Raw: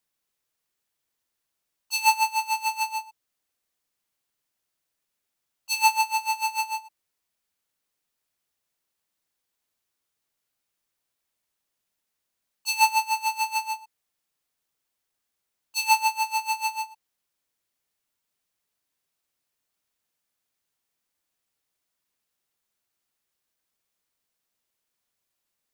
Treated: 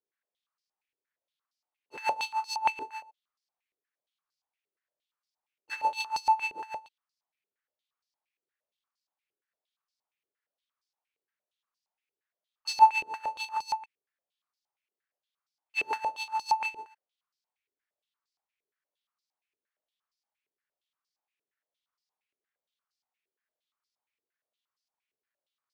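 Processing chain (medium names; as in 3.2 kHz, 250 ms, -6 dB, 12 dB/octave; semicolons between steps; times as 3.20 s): square wave that keeps the level; step-sequenced band-pass 8.6 Hz 410–4900 Hz; trim -1.5 dB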